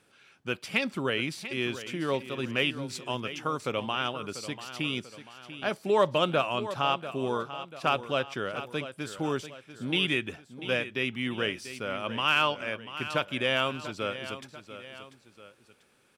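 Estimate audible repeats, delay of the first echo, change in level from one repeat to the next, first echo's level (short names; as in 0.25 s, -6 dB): 2, 0.691 s, -6.5 dB, -12.5 dB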